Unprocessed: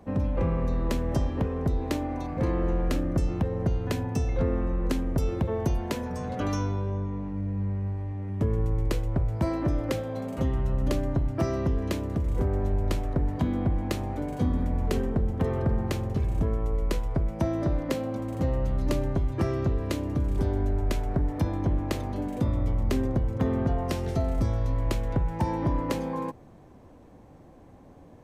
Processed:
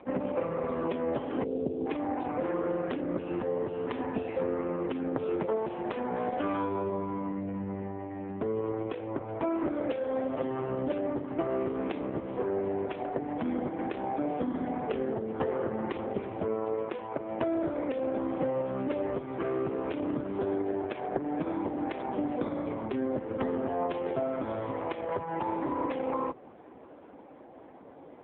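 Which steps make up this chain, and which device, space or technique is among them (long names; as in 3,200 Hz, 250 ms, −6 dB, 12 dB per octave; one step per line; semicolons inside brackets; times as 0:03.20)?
0:01.44–0:01.87: Butterworth low-pass 610 Hz 36 dB per octave
0:06.94–0:07.67: flutter between parallel walls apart 8.5 metres, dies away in 0.22 s
0:19.75–0:20.35: dynamic equaliser 140 Hz, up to +5 dB, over −42 dBFS, Q 4.5
voicemail (band-pass filter 320–3,200 Hz; downward compressor 10 to 1, threshold −33 dBFS, peak gain reduction 9.5 dB; level +8 dB; AMR narrowband 4.75 kbit/s 8,000 Hz)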